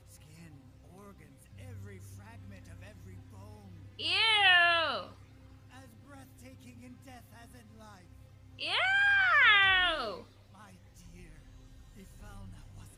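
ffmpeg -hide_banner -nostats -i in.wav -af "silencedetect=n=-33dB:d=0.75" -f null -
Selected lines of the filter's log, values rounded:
silence_start: 0.00
silence_end: 4.00 | silence_duration: 4.00
silence_start: 5.01
silence_end: 8.61 | silence_duration: 3.60
silence_start: 10.14
silence_end: 12.97 | silence_duration: 2.83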